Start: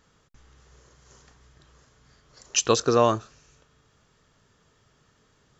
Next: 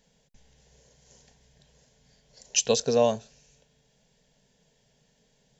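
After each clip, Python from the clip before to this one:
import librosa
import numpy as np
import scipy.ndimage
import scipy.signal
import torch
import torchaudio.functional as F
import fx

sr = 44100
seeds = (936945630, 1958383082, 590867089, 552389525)

y = fx.fixed_phaser(x, sr, hz=330.0, stages=6)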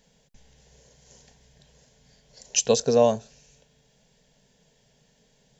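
y = fx.dynamic_eq(x, sr, hz=3100.0, q=0.73, threshold_db=-44.0, ratio=4.0, max_db=-5)
y = y * librosa.db_to_amplitude(3.5)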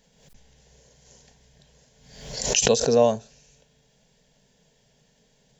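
y = fx.pre_swell(x, sr, db_per_s=65.0)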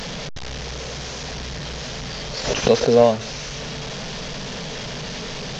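y = fx.delta_mod(x, sr, bps=32000, step_db=-28.5)
y = y * librosa.db_to_amplitude(4.5)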